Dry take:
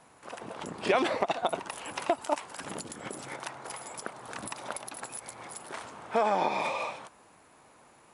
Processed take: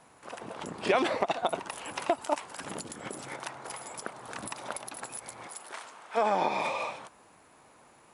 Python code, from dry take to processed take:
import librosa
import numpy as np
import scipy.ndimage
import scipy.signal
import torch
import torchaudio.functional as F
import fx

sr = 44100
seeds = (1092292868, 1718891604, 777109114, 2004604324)

y = fx.highpass(x, sr, hz=fx.line((5.47, 510.0), (6.16, 1400.0)), slope=6, at=(5.47, 6.16), fade=0.02)